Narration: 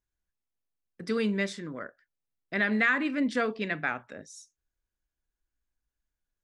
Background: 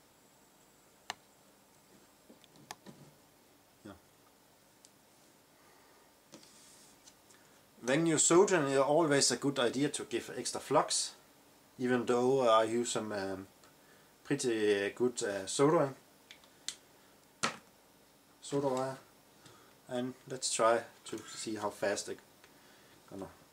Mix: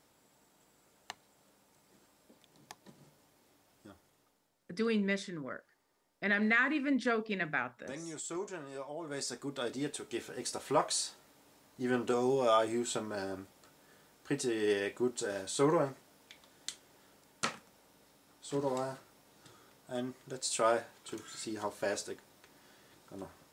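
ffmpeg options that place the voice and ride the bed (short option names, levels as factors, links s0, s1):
-filter_complex "[0:a]adelay=3700,volume=0.668[s0];[1:a]volume=2.99,afade=t=out:st=3.88:d=0.64:silence=0.298538,afade=t=in:st=9:d=1.44:silence=0.211349[s1];[s0][s1]amix=inputs=2:normalize=0"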